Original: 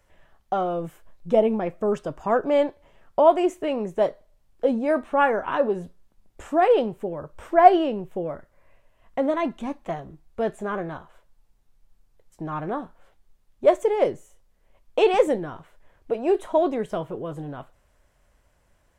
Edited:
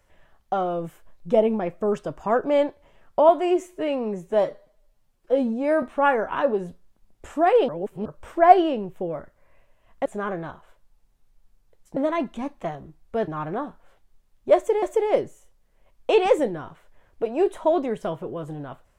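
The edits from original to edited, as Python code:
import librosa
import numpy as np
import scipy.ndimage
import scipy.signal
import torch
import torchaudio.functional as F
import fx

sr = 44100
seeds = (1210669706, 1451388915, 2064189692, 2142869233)

y = fx.edit(x, sr, fx.stretch_span(start_s=3.29, length_s=1.69, factor=1.5),
    fx.reverse_span(start_s=6.84, length_s=0.37),
    fx.move(start_s=9.21, length_s=1.31, to_s=12.43),
    fx.repeat(start_s=13.71, length_s=0.27, count=2), tone=tone)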